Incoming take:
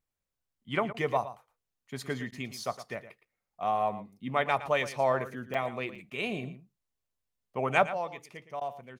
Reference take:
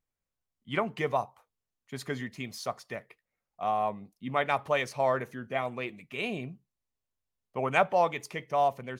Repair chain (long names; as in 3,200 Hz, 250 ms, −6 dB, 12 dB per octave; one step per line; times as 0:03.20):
repair the gap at 0:03.25/0:05.54/0:05.95, 5 ms
repair the gap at 0:00.93/0:02.31/0:06.10/0:08.60, 11 ms
echo removal 114 ms −13.5 dB
level correction +9.5 dB, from 0:07.91